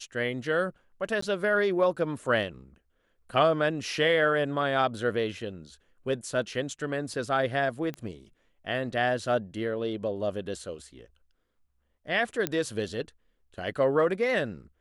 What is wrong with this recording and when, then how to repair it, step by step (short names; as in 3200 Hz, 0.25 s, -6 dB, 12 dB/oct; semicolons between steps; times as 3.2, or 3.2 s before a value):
1.21–1.22 gap 14 ms
7.94 pop -23 dBFS
12.47 pop -11 dBFS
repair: de-click; interpolate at 1.21, 14 ms